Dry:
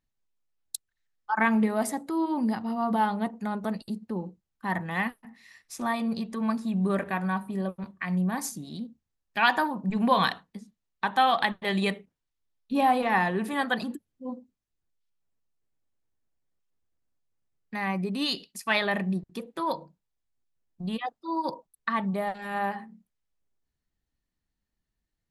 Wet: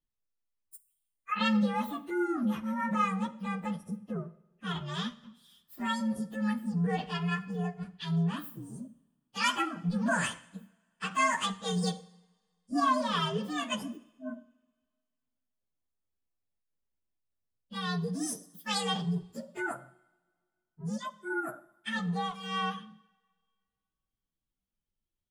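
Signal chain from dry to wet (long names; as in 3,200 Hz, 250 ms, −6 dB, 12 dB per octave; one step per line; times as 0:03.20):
partials spread apart or drawn together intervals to 129%
coupled-rooms reverb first 0.75 s, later 2.2 s, from −20 dB, DRR 14.5 dB
level −2 dB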